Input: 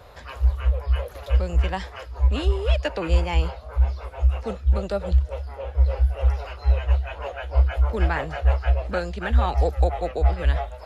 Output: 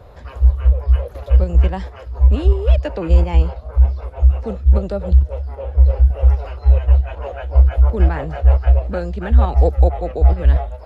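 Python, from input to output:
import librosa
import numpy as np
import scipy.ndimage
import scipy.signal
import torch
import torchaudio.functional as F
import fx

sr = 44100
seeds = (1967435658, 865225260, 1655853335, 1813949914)

p1 = fx.tilt_shelf(x, sr, db=6.5, hz=820.0)
p2 = fx.level_steps(p1, sr, step_db=17)
p3 = p1 + F.gain(torch.from_numpy(p2), -0.5).numpy()
y = F.gain(torch.from_numpy(p3), -1.5).numpy()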